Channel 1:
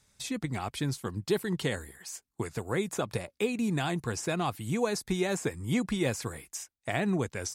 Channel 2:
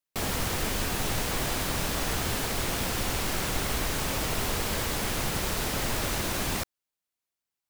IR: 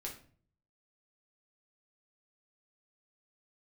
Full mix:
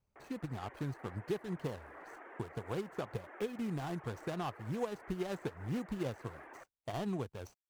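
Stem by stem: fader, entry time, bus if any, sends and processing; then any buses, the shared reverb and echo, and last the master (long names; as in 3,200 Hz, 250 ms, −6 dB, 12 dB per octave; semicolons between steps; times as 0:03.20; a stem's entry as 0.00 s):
+3.0 dB, 0.00 s, no send, running median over 25 samples; expander for the loud parts 1.5 to 1, over −46 dBFS
−15.0 dB, 0.00 s, no send, elliptic band-pass filter 310–1,900 Hz, stop band 40 dB; reverb reduction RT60 0.61 s; automatic gain control gain up to 10 dB; automatic ducking −9 dB, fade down 0.30 s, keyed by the first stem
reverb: not used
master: parametric band 240 Hz −4.5 dB 1.9 octaves; downward compressor 2 to 1, threshold −38 dBFS, peak gain reduction 8.5 dB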